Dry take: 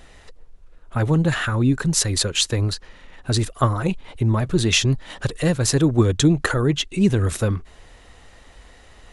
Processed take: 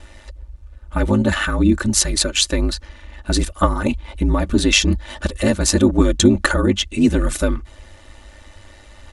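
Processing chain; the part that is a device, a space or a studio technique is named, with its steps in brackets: ring-modulated robot voice (ring modulator 51 Hz; comb 3.4 ms, depth 73%); trim +4.5 dB

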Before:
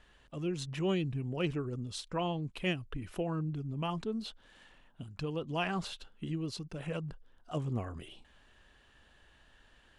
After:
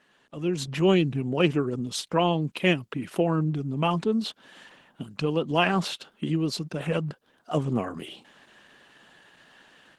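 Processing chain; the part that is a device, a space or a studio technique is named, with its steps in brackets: video call (high-pass 150 Hz 24 dB/octave; level rider gain up to 8.5 dB; trim +3 dB; Opus 16 kbps 48 kHz)

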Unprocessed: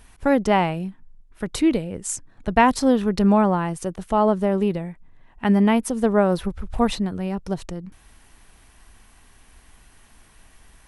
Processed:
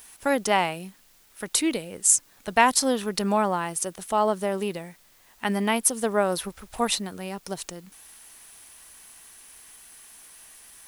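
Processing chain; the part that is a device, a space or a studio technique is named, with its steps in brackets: turntable without a phono preamp (RIAA curve recording; white noise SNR 31 dB); trim -2 dB

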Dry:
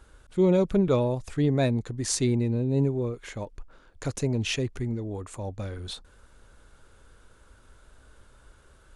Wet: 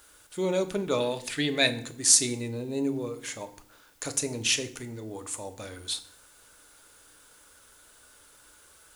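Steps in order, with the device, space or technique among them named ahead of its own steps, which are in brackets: turntable without a phono preamp (RIAA curve recording; white noise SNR 32 dB); 1.00–1.67 s: high-order bell 2.7 kHz +10 dB; FDN reverb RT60 0.57 s, low-frequency decay 1.5×, high-frequency decay 0.8×, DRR 7.5 dB; trim -1 dB

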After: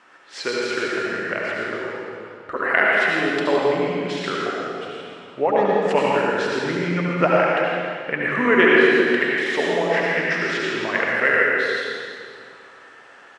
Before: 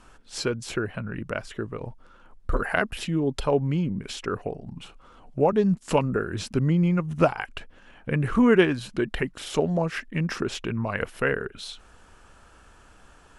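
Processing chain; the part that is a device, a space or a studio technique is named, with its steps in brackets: station announcement (band-pass 370–4900 Hz; peaking EQ 1.9 kHz +11 dB 0.39 oct; loudspeakers at several distances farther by 41 m -12 dB, 57 m -9 dB; reverberation RT60 2.2 s, pre-delay 66 ms, DRR -4 dB); trim +1.5 dB

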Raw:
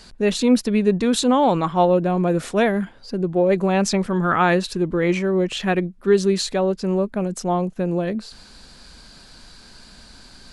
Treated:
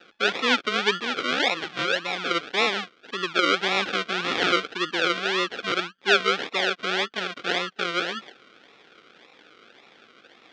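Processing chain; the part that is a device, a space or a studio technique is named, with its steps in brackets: 1.00–2.31 s: fifteen-band graphic EQ 160 Hz -5 dB, 400 Hz -10 dB, 10 kHz -10 dB; circuit-bent sampling toy (decimation with a swept rate 40×, swing 60% 1.8 Hz; cabinet simulation 500–5300 Hz, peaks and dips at 620 Hz -8 dB, 930 Hz -8 dB, 1.4 kHz +7 dB, 2.4 kHz +5 dB, 3.4 kHz +8 dB); trim -1 dB

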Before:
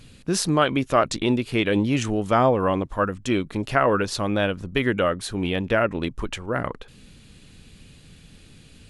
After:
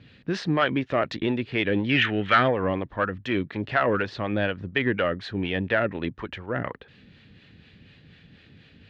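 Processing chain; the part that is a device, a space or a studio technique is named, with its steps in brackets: 1.89–2.48 s: high-order bell 2.2 kHz +14 dB; guitar amplifier with harmonic tremolo (harmonic tremolo 4.1 Hz, depth 50%, crossover 520 Hz; saturation -12 dBFS, distortion -14 dB; cabinet simulation 86–3900 Hz, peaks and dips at 96 Hz +3 dB, 1.1 kHz -3 dB, 1.8 kHz +8 dB)

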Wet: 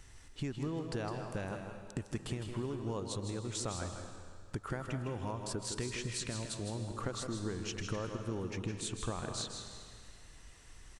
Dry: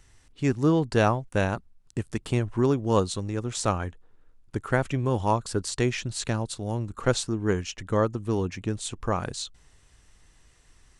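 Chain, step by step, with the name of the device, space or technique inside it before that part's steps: serial compression, leveller first (compression 2.5:1, threshold -25 dBFS, peak gain reduction 6.5 dB; compression 4:1, threshold -39 dBFS, peak gain reduction 15 dB); 5.24–6.72 s: band-stop 810 Hz, Q 5; delay 159 ms -8 dB; algorithmic reverb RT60 1.9 s, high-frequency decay 0.95×, pre-delay 110 ms, DRR 7 dB; trim +1.5 dB

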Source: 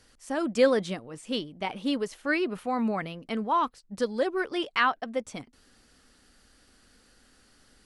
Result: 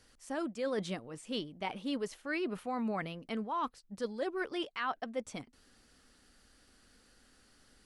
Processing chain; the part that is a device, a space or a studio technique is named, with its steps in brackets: compression on the reversed sound (reverse; compression 12:1, threshold -27 dBFS, peak gain reduction 12.5 dB; reverse); trim -4 dB

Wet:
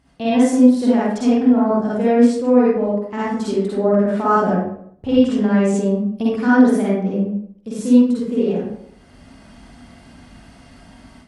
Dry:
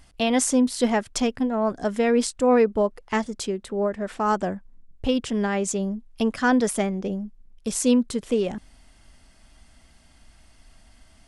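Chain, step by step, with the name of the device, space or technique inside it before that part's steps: far laptop microphone (reverberation RT60 0.70 s, pre-delay 44 ms, DRR -7.5 dB; high-pass 130 Hz 12 dB/octave; level rider gain up to 11 dB); tilt EQ -2.5 dB/octave; trim -5.5 dB

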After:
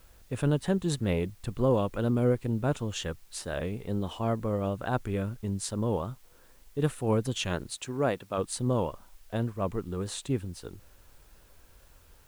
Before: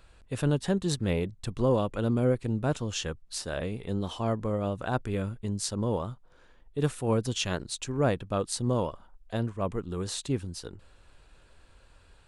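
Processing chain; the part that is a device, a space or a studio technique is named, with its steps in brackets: 7.75–8.37 s: high-pass 130 Hz -> 450 Hz 6 dB/octave; peaking EQ 5.2 kHz -6 dB 0.77 oct; plain cassette with noise reduction switched in (tape noise reduction on one side only decoder only; wow and flutter; white noise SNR 33 dB)

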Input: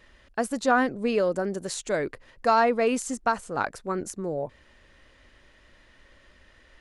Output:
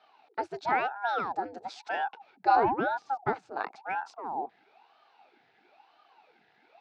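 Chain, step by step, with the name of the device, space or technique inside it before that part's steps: voice changer toy (ring modulator with a swept carrier 660 Hz, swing 85%, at 1 Hz; cabinet simulation 430–4100 Hz, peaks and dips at 560 Hz -10 dB, 800 Hz +9 dB, 1.1 kHz -10 dB, 1.9 kHz -7 dB, 3.1 kHz -8 dB); 2.56–3.33 s: tilt EQ -4.5 dB/octave

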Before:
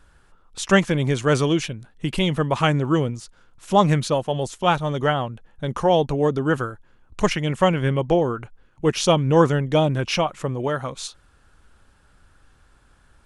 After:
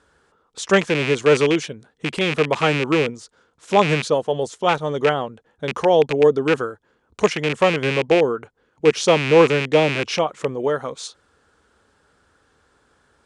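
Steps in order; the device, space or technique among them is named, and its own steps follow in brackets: car door speaker with a rattle (rattle on loud lows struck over -24 dBFS, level -10 dBFS; cabinet simulation 110–9100 Hz, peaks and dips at 120 Hz -8 dB, 180 Hz -4 dB, 450 Hz +8 dB, 2.6 kHz -4 dB)

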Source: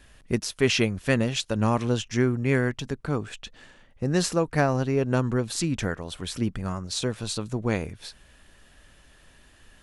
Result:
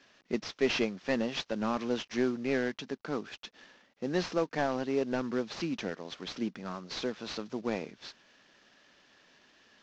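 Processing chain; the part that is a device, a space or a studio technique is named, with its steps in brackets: 5.77–6.43 s: dynamic bell 1.5 kHz, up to -5 dB, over -45 dBFS, Q 1.9; early wireless headset (high-pass 200 Hz 24 dB/octave; CVSD coder 32 kbps); trim -4.5 dB

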